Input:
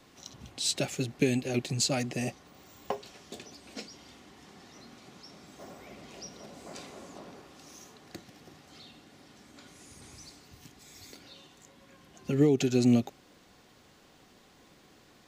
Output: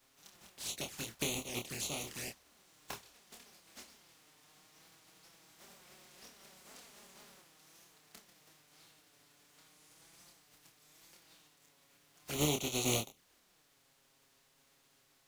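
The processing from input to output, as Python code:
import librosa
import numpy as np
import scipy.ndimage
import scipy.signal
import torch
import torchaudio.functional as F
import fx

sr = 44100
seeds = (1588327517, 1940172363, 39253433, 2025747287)

y = fx.spec_flatten(x, sr, power=0.34)
y = fx.env_flanger(y, sr, rest_ms=8.3, full_db=-27.0)
y = fx.doubler(y, sr, ms=27.0, db=-5.0)
y = F.gain(torch.from_numpy(y), -9.0).numpy()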